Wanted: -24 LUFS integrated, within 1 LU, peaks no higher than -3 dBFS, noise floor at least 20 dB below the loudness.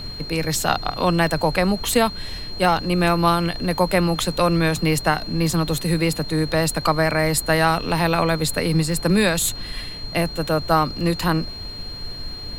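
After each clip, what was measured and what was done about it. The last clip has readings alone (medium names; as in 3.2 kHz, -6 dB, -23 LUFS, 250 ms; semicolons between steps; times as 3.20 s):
steady tone 4.2 kHz; tone level -33 dBFS; noise floor -33 dBFS; noise floor target -41 dBFS; loudness -20.5 LUFS; peak level -4.0 dBFS; loudness target -24.0 LUFS
-> band-stop 4.2 kHz, Q 30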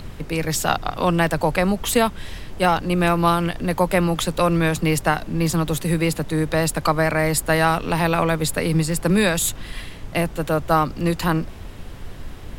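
steady tone not found; noise floor -36 dBFS; noise floor target -41 dBFS
-> noise print and reduce 6 dB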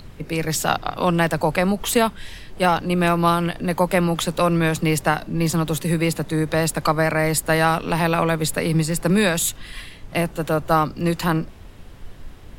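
noise floor -41 dBFS; loudness -21.0 LUFS; peak level -4.0 dBFS; loudness target -24.0 LUFS
-> trim -3 dB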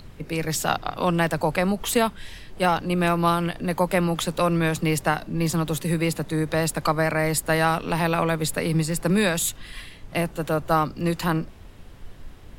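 loudness -24.0 LUFS; peak level -7.0 dBFS; noise floor -44 dBFS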